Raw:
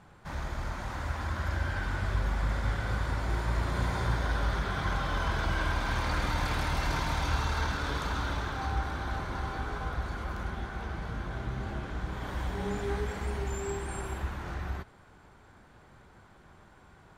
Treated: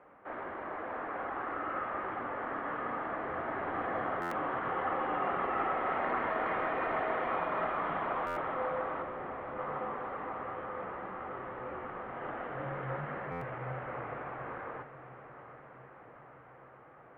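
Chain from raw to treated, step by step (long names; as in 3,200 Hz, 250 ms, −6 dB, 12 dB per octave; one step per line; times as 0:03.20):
0:09.02–0:09.59: linear delta modulator 16 kbit/s, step −49.5 dBFS
single-sideband voice off tune −270 Hz 500–2,500 Hz
on a send: feedback delay with all-pass diffusion 801 ms, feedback 63%, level −12.5 dB
on the sum: buffer that repeats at 0:04.21/0:08.26/0:13.31, samples 512, times 8
level +2 dB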